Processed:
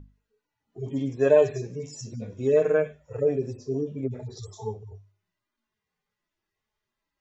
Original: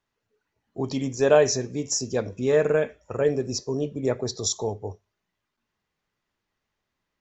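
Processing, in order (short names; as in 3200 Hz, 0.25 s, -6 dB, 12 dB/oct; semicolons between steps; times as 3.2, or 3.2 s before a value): median-filter separation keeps harmonic; hum 50 Hz, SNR 15 dB; notches 50/100/150/200/250 Hz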